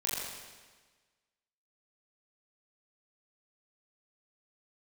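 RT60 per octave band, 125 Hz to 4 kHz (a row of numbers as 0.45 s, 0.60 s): 1.4 s, 1.4 s, 1.4 s, 1.4 s, 1.4 s, 1.3 s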